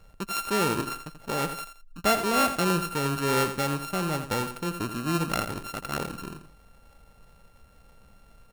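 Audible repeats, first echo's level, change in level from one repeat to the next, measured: 2, -10.0 dB, -11.0 dB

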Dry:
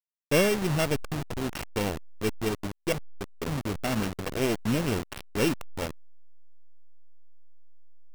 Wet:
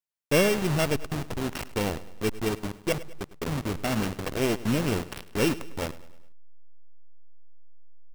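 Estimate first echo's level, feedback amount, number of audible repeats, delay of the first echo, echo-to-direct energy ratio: -17.5 dB, 50%, 3, 0.103 s, -16.5 dB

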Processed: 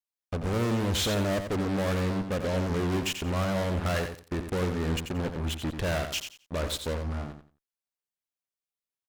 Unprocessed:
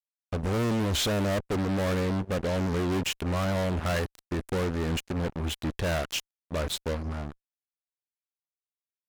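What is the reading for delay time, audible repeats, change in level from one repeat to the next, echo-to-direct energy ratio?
88 ms, 3, -13.0 dB, -8.0 dB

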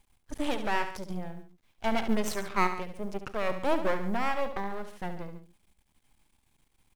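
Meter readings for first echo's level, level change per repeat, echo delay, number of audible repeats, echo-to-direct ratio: -10.0 dB, -4.5 dB, 71 ms, 2, -8.5 dB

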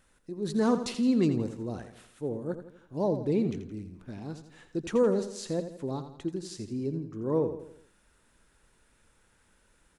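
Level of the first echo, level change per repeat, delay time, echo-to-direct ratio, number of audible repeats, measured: -10.5 dB, -6.5 dB, 84 ms, -9.5 dB, 4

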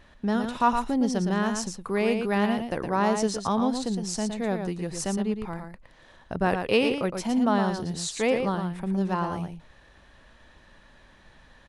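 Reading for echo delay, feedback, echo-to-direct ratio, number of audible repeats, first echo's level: 0.114 s, no steady repeat, -6.5 dB, 1, -6.5 dB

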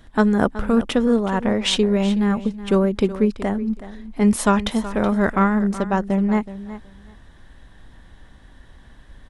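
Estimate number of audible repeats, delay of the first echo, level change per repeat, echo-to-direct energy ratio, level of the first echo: 2, 0.373 s, -16.0 dB, -14.5 dB, -14.5 dB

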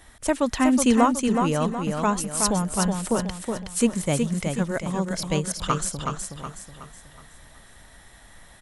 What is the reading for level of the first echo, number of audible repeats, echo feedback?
-5.0 dB, 4, 41%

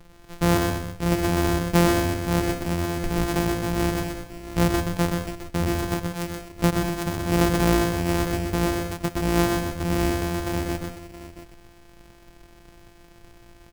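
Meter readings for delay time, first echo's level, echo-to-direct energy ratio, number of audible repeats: 0.125 s, -4.5 dB, -3.5 dB, 3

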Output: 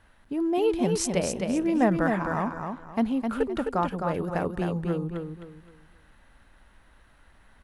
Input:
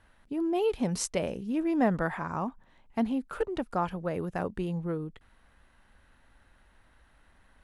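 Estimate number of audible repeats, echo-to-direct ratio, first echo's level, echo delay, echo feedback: 3, -4.5 dB, -5.0 dB, 0.26 s, 30%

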